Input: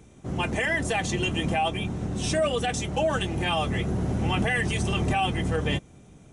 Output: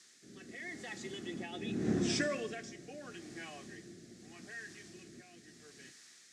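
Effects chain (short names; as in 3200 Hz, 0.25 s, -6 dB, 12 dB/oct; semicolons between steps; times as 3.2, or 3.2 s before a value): Doppler pass-by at 1.91, 26 m/s, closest 2.9 m; added noise blue -52 dBFS; tone controls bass -1 dB, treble +3 dB; rotary speaker horn 0.8 Hz; speaker cabinet 180–7100 Hz, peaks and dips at 230 Hz +5 dB, 350 Hz +7 dB, 560 Hz -5 dB, 920 Hz -9 dB, 1800 Hz +9 dB, 2900 Hz -5 dB; Schroeder reverb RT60 0.9 s, combs from 29 ms, DRR 14.5 dB; gain +1.5 dB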